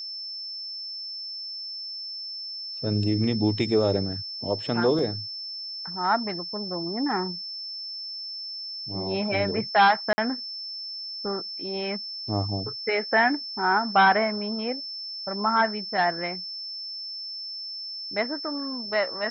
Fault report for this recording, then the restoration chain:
tone 5300 Hz -33 dBFS
4.99 gap 2.3 ms
10.13–10.18 gap 50 ms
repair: notch 5300 Hz, Q 30; interpolate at 4.99, 2.3 ms; interpolate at 10.13, 50 ms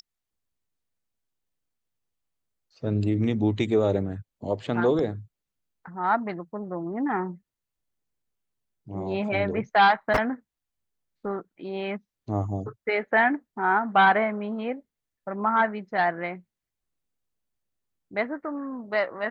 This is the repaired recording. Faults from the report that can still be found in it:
none

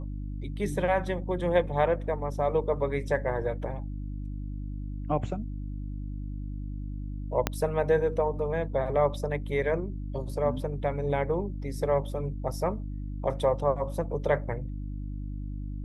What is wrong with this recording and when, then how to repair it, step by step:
hum 50 Hz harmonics 6 -35 dBFS
7.47 pop -9 dBFS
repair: de-click; de-hum 50 Hz, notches 6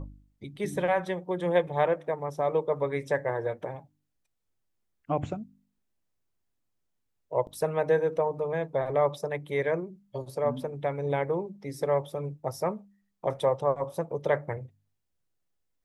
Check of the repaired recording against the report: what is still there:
7.47 pop

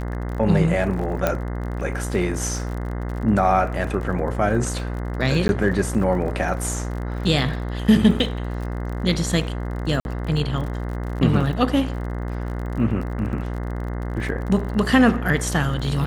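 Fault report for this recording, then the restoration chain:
buzz 60 Hz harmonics 35 -27 dBFS
crackle 40/s -31 dBFS
1.27 pop -6 dBFS
5.48–5.49 gap 11 ms
10–10.05 gap 51 ms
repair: de-click; de-hum 60 Hz, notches 35; interpolate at 5.48, 11 ms; interpolate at 10, 51 ms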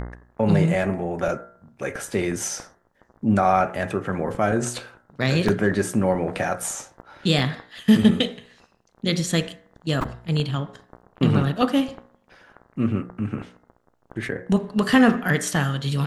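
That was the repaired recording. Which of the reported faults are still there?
none

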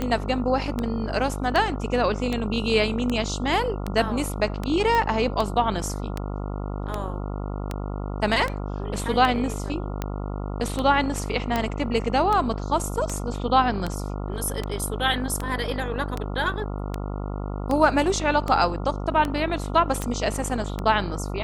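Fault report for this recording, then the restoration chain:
buzz 50 Hz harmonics 28 -30 dBFS
tick 78 rpm -13 dBFS
4.95 pop -12 dBFS
11.56 pop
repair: de-click; de-hum 50 Hz, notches 28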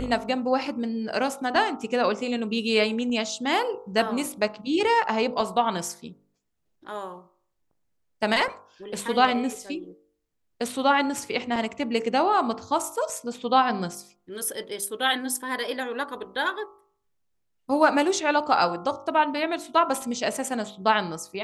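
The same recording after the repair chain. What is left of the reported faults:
none

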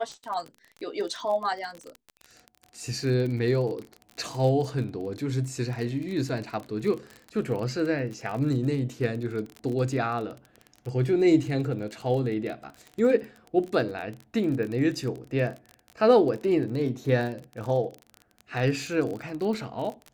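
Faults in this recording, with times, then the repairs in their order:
crackle 30/s -32 dBFS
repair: de-click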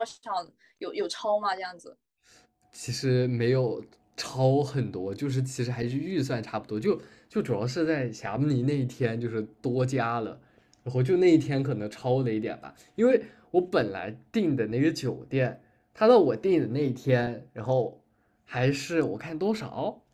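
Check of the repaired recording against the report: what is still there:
none

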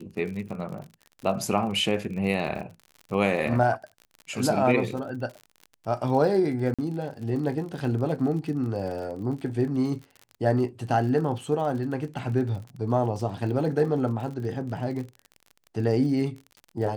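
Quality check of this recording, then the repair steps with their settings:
crackle 47/s -35 dBFS
6.74–6.79 gap 46 ms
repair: de-click; interpolate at 6.74, 46 ms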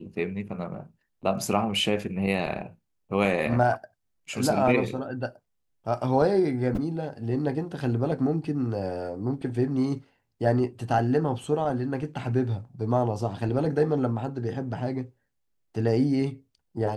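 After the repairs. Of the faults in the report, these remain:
none

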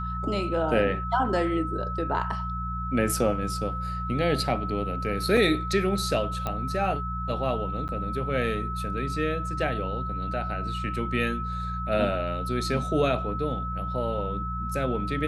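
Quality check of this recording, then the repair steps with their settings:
hum 60 Hz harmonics 3 -33 dBFS
tone 1300 Hz -32 dBFS
5.37 gap 2.7 ms
6.47 pop -16 dBFS
7.88–7.89 gap 9.3 ms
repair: de-click; de-hum 60 Hz, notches 3; notch 1300 Hz, Q 30; interpolate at 5.37, 2.7 ms; interpolate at 7.88, 9.3 ms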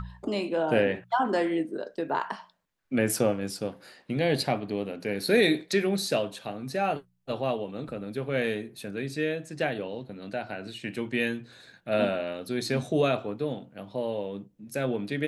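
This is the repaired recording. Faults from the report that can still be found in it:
none

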